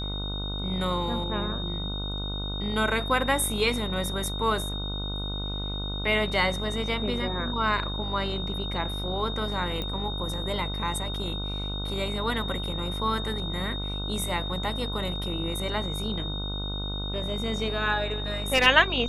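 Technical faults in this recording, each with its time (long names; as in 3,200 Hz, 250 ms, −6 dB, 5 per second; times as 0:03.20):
mains buzz 50 Hz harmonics 30 −33 dBFS
whistle 3,700 Hz −34 dBFS
0:09.82: click −19 dBFS
0:18.54–0:18.67: clipping −15 dBFS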